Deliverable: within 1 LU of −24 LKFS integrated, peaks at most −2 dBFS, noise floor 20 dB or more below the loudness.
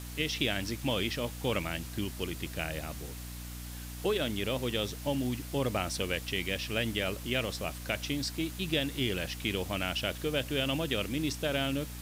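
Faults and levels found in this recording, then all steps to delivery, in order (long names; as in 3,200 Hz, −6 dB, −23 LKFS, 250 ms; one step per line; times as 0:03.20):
mains hum 60 Hz; hum harmonics up to 300 Hz; level of the hum −40 dBFS; background noise floor −42 dBFS; target noise floor −53 dBFS; integrated loudness −33.0 LKFS; sample peak −16.0 dBFS; target loudness −24.0 LKFS
→ hum removal 60 Hz, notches 5
noise reduction from a noise print 11 dB
level +9 dB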